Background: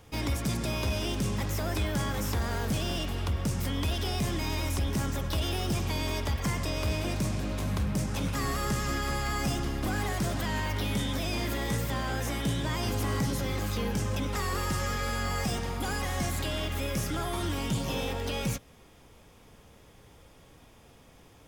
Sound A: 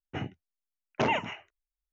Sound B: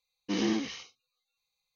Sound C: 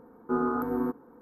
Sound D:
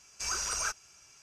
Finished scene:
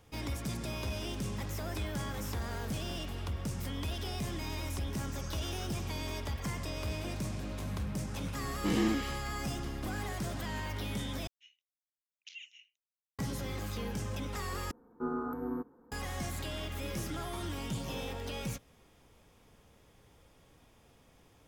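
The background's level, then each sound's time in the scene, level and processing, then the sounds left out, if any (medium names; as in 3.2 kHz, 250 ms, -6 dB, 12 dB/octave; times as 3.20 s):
background -7 dB
4.96 s: add D -1.5 dB + compression 3:1, threshold -53 dBFS
8.35 s: add B -0.5 dB + distance through air 170 m
11.27 s: replace with A -8.5 dB + steep high-pass 2.9 kHz
14.71 s: replace with C -9 dB + bass shelf 120 Hz +8.5 dB
16.53 s: add B -17.5 dB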